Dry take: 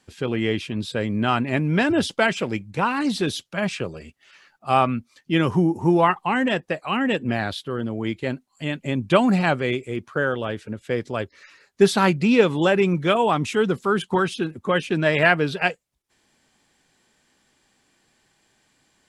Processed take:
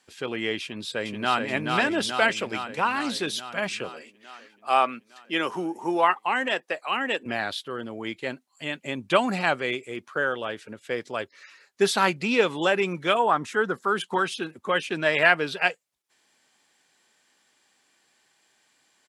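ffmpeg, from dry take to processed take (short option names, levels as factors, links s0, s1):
-filter_complex "[0:a]asplit=2[s0][s1];[s1]afade=t=in:st=0.62:d=0.01,afade=t=out:st=1.46:d=0.01,aecho=0:1:430|860|1290|1720|2150|2580|3010|3440|3870|4300|4730|5160:0.668344|0.467841|0.327489|0.229242|0.160469|0.112329|0.07863|0.055041|0.0385287|0.0269701|0.0188791|0.0132153[s2];[s0][s2]amix=inputs=2:normalize=0,asettb=1/sr,asplit=3[s3][s4][s5];[s3]atrim=end=3.894[s6];[s4]atrim=start=3.89:end=7.26,asetpts=PTS-STARTPTS,afade=t=in:d=0.004:c=qsin,afade=t=out:st=3.366:d=0.004:c=qsin,highpass=280[s7];[s5]atrim=start=7.256[s8];[s6][s7]acrossfade=d=0.004:c1=hsin:c2=qsin[s9];[s9][s8]acrossfade=d=0.004:c1=qsin:c2=hsin,asettb=1/sr,asplit=3[s10][s11][s12];[s10]atrim=end=13.194[s13];[s11]atrim=start=13.19:end=13.88,asetpts=PTS-STARTPTS,afade=t=in:d=0.004:c=qsin,afade=t=out:st=0.686:d=0.004:c=qsin,highshelf=f=2000:t=q:w=3:g=-6[s14];[s12]atrim=start=13.876[s15];[s13][s14]acrossfade=d=0.004:c1=hsin:c2=qsin[s16];[s16][s15]acrossfade=d=0.004:c1=qsin:c2=hsin,highpass=f=660:p=1"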